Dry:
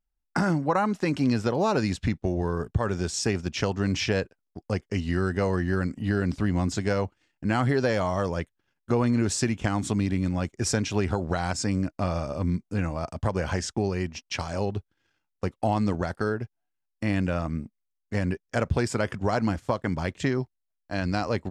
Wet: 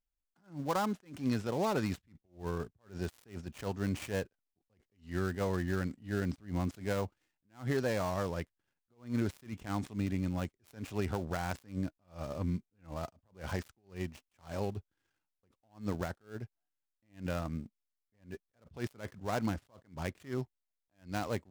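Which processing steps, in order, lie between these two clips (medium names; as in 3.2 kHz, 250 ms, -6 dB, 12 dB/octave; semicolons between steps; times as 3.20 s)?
dead-time distortion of 0.11 ms; attacks held to a fixed rise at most 200 dB/s; trim -7.5 dB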